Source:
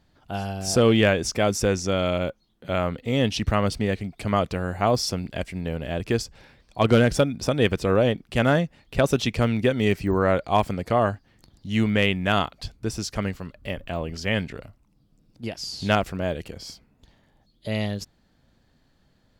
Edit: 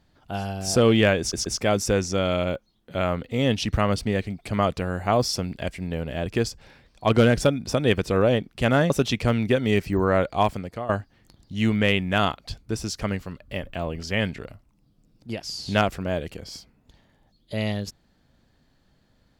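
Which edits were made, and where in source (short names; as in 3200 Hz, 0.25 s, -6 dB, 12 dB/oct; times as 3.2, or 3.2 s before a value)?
1.2 stutter 0.13 s, 3 plays
8.64–9.04 cut
10.52–11.03 fade out, to -15.5 dB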